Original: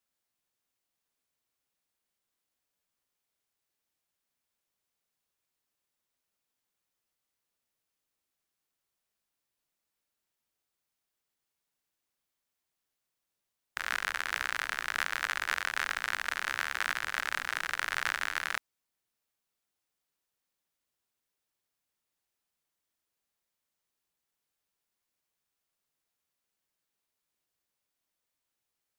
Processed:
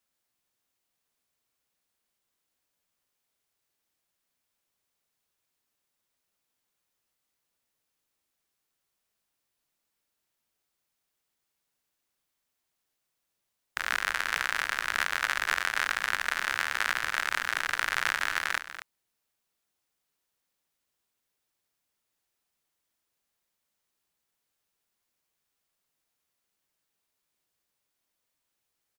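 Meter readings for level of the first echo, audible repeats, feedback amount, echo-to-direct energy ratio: -12.0 dB, 1, no steady repeat, -12.0 dB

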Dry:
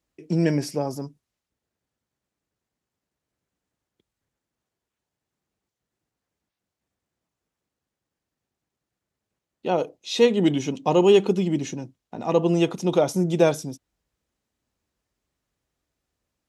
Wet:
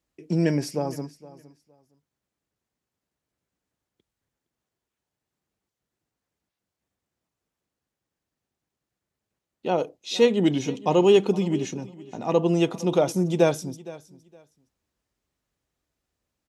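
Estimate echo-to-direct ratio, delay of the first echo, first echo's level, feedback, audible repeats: -19.0 dB, 0.464 s, -19.0 dB, 20%, 2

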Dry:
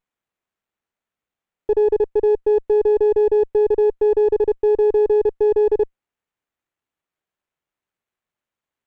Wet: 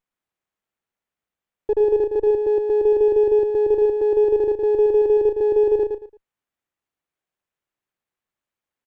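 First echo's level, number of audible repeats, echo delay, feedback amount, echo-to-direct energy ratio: -5.5 dB, 3, 0.112 s, 25%, -5.0 dB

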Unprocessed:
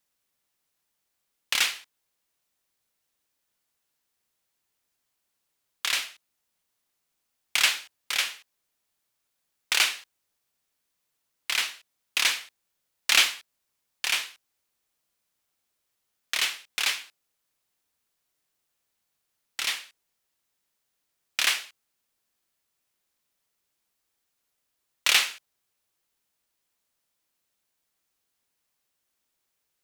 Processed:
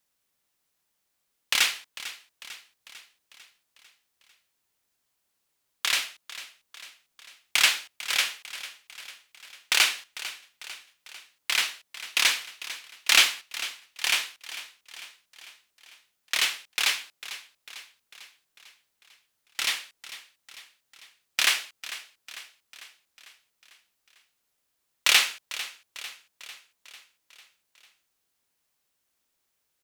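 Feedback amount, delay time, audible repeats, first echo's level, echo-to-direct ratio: 57%, 0.448 s, 5, -15.0 dB, -13.5 dB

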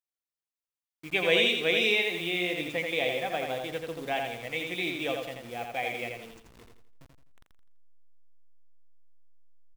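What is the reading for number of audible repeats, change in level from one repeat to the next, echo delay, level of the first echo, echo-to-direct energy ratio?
4, -8.5 dB, 84 ms, -4.5 dB, -4.0 dB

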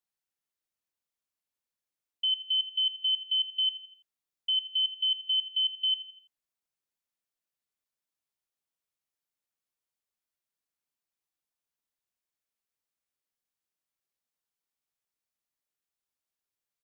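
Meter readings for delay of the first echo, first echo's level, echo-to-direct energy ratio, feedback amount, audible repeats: 83 ms, -15.0 dB, -14.0 dB, 45%, 3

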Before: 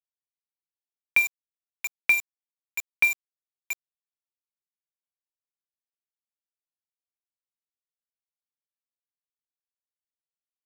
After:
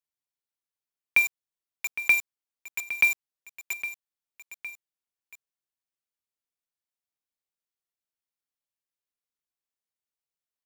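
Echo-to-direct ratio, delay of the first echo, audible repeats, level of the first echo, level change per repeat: -12.0 dB, 0.811 s, 2, -13.0 dB, -5.0 dB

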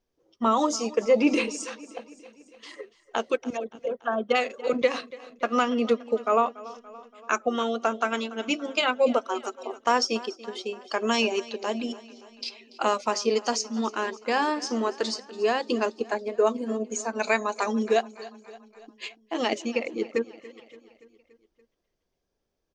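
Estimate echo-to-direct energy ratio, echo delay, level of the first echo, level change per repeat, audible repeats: -17.0 dB, 0.286 s, -19.0 dB, -4.5 dB, 4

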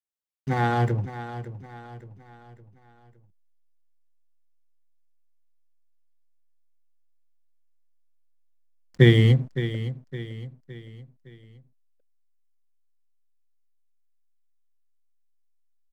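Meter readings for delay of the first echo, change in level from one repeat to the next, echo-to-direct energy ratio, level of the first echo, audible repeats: 0.563 s, -7.0 dB, -11.5 dB, -12.5 dB, 4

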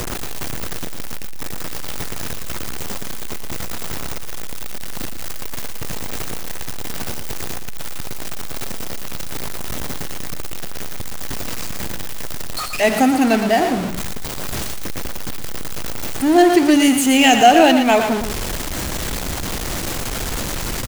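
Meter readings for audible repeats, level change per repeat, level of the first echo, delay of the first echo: 2, -13.0 dB, -8.0 dB, 0.116 s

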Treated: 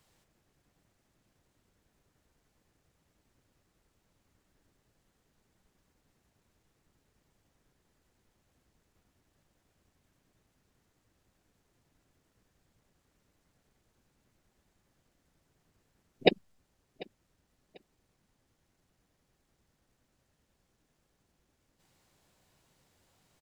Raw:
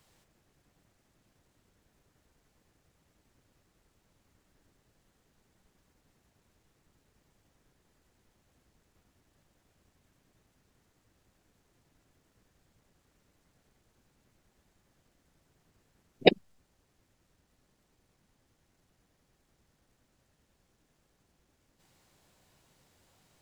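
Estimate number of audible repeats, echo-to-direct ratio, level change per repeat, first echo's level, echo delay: 2, -21.5 dB, -11.0 dB, -22.0 dB, 0.743 s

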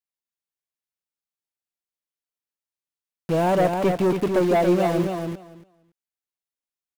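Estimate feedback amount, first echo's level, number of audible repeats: 15%, -5.0 dB, 2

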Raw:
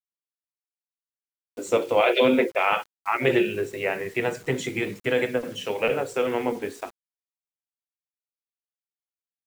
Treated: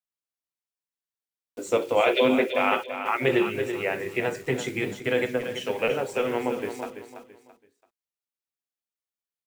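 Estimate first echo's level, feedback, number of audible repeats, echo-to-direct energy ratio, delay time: -9.5 dB, 31%, 3, -9.0 dB, 0.334 s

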